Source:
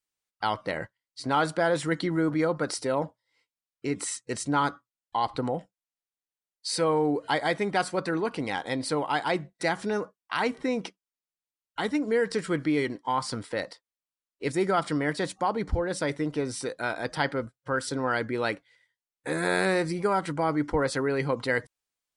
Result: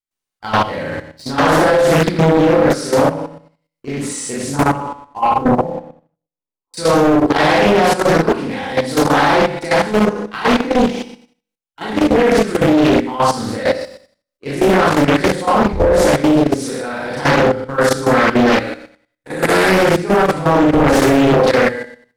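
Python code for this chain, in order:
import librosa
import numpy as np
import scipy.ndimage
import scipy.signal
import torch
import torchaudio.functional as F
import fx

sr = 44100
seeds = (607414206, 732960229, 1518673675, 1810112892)

y = fx.steep_lowpass(x, sr, hz=1200.0, slope=96, at=(4.56, 6.74))
y = fx.rev_schroeder(y, sr, rt60_s=0.59, comb_ms=29, drr_db=-9.5)
y = fx.transient(y, sr, attack_db=-6, sustain_db=0)
y = fx.leveller(y, sr, passes=2)
y = fx.echo_feedback(y, sr, ms=62, feedback_pct=42, wet_db=-4)
y = fx.level_steps(y, sr, step_db=12)
y = fx.low_shelf(y, sr, hz=300.0, db=7.0)
y = fx.hum_notches(y, sr, base_hz=60, count=3)
y = fx.doppler_dist(y, sr, depth_ms=0.8)
y = y * librosa.db_to_amplitude(-1.0)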